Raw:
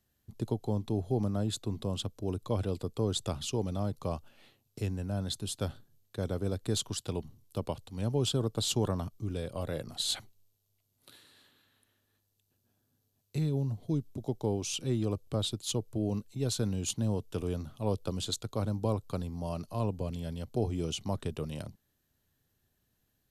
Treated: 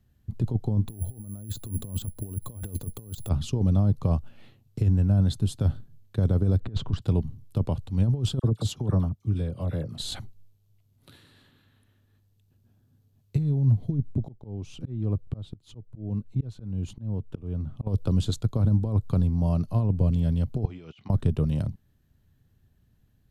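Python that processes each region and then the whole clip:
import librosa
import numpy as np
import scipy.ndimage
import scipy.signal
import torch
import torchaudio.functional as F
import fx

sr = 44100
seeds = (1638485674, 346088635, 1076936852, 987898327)

y = fx.chain(x, sr, fx.peak_eq(hz=11000.0, db=13.0, octaves=0.7),
    fx.resample_bad(factor=4, down='filtered', up='zero_stuff'), at=(0.88, 3.29))
y = fx.chain(y, sr, fx.lowpass(hz=2300.0, slope=12),
    fx.over_compress(threshold_db=-38.0, ratio=-0.5), at=(6.6, 7.02))
y = fx.chain(y, sr, fx.highpass(hz=62.0, slope=12),
    fx.dispersion(late='lows', ms=48.0, hz=1500.0),
    fx.upward_expand(threshold_db=-39.0, expansion=1.5), at=(8.39, 9.98))
y = fx.chain(y, sr, fx.high_shelf(hz=3200.0, db=-11.5),
    fx.auto_swell(attack_ms=537.0), at=(13.91, 17.87))
y = fx.chain(y, sr, fx.bandpass_q(hz=2100.0, q=0.95),
    fx.air_absorb(metres=90.0),
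    fx.over_compress(threshold_db=-53.0, ratio=-1.0), at=(20.65, 21.1))
y = fx.dynamic_eq(y, sr, hz=2400.0, q=1.2, threshold_db=-52.0, ratio=4.0, max_db=-4)
y = fx.over_compress(y, sr, threshold_db=-32.0, ratio=-0.5)
y = fx.bass_treble(y, sr, bass_db=13, treble_db=-7)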